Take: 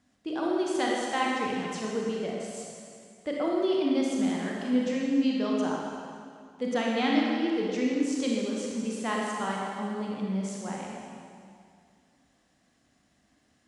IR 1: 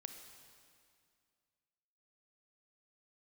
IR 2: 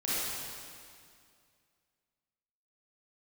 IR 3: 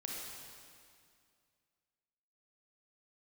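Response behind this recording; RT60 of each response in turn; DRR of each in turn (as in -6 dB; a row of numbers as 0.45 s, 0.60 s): 3; 2.2 s, 2.2 s, 2.2 s; 6.0 dB, -10.5 dB, -2.5 dB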